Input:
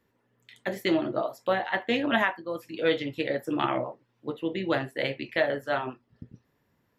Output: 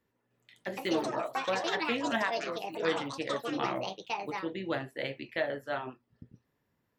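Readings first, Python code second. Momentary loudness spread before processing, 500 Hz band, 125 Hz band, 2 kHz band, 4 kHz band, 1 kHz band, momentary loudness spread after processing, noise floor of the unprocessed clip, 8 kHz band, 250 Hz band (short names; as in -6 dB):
10 LU, -5.0 dB, -6.0 dB, -5.0 dB, -2.5 dB, -2.5 dB, 7 LU, -73 dBFS, n/a, -6.0 dB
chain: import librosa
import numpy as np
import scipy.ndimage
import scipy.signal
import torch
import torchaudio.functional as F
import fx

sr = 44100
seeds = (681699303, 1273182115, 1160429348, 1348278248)

y = fx.echo_pitch(x, sr, ms=306, semitones=6, count=2, db_per_echo=-3.0)
y = y * 10.0 ** (-6.5 / 20.0)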